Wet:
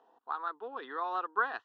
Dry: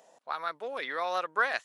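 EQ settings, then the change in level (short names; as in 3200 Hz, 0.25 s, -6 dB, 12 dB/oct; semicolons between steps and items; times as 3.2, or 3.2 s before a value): LPF 3000 Hz 24 dB/oct; fixed phaser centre 590 Hz, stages 6; 0.0 dB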